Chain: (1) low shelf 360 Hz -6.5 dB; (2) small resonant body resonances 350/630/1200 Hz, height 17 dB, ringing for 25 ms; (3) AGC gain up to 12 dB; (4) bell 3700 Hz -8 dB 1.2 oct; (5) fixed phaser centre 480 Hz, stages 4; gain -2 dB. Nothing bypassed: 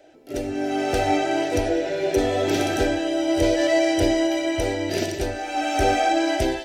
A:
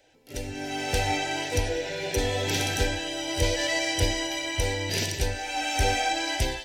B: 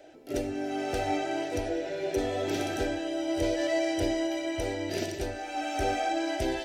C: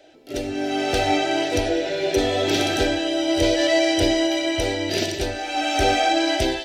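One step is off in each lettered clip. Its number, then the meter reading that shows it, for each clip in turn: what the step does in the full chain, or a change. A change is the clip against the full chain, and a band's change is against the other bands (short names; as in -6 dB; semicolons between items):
2, 250 Hz band -12.0 dB; 3, momentary loudness spread change -2 LU; 4, 4 kHz band +6.5 dB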